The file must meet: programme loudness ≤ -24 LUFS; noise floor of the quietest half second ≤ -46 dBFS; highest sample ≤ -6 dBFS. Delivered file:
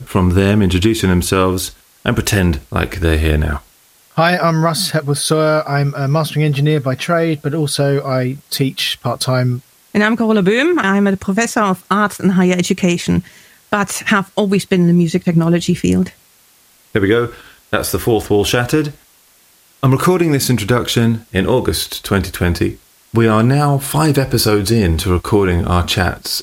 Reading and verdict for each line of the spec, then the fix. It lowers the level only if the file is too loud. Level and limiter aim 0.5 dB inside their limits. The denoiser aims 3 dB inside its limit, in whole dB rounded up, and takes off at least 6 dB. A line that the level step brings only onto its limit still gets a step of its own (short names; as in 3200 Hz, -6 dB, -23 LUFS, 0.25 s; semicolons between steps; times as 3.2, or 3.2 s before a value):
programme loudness -15.5 LUFS: fail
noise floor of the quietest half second -50 dBFS: OK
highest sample -1.5 dBFS: fail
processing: gain -9 dB